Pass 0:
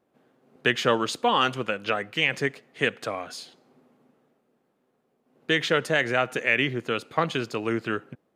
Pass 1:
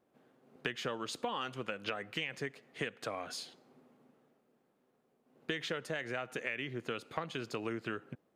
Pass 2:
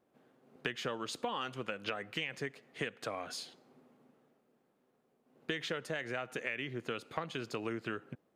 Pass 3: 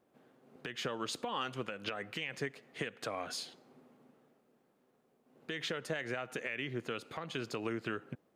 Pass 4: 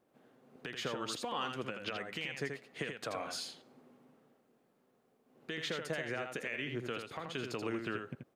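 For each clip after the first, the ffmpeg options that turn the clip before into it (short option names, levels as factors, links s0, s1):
-af "acompressor=threshold=0.0316:ratio=12,volume=0.668"
-af anull
-af "alimiter=level_in=1.33:limit=0.0631:level=0:latency=1:release=137,volume=0.75,volume=1.26"
-af "aecho=1:1:82:0.531,volume=0.891"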